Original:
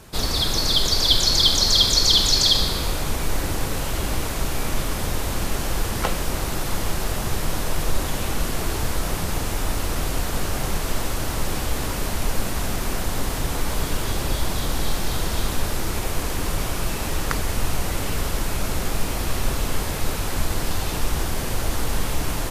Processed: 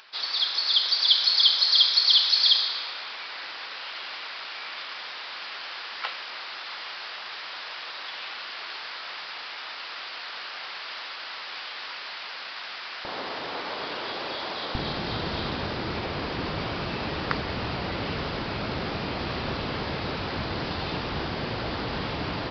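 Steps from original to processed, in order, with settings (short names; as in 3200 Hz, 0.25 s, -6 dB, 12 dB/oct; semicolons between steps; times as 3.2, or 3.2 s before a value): HPF 1400 Hz 12 dB/oct, from 13.05 s 450 Hz, from 14.75 s 110 Hz; upward compressor, threshold -43 dBFS; downsampling 11025 Hz; gain -1 dB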